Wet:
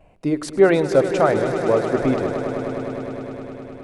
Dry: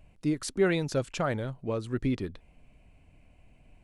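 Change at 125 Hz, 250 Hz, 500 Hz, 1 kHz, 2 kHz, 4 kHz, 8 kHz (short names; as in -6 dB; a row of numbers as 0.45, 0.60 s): +5.0 dB, +9.5 dB, +14.0 dB, +14.0 dB, +9.5 dB, +4.5 dB, n/a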